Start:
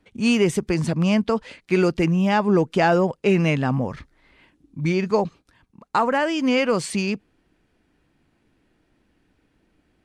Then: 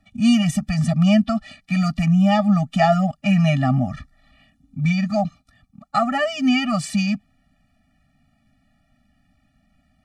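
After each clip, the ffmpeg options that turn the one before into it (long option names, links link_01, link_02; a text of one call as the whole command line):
ffmpeg -i in.wav -af "afftfilt=real='re*eq(mod(floor(b*sr/1024/280),2),0)':imag='im*eq(mod(floor(b*sr/1024/280),2),0)':win_size=1024:overlap=0.75,volume=4.5dB" out.wav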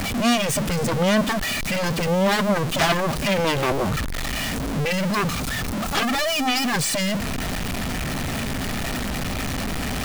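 ffmpeg -i in.wav -af "aeval=exprs='val(0)+0.5*0.0841*sgn(val(0))':channel_layout=same,aeval=exprs='0.562*(cos(1*acos(clip(val(0)/0.562,-1,1)))-cos(1*PI/2))+0.158*(cos(3*acos(clip(val(0)/0.562,-1,1)))-cos(3*PI/2))+0.0562*(cos(6*acos(clip(val(0)/0.562,-1,1)))-cos(6*PI/2))+0.178*(cos(7*acos(clip(val(0)/0.562,-1,1)))-cos(7*PI/2))+0.0708*(cos(8*acos(clip(val(0)/0.562,-1,1)))-cos(8*PI/2))':channel_layout=same,volume=-4.5dB" out.wav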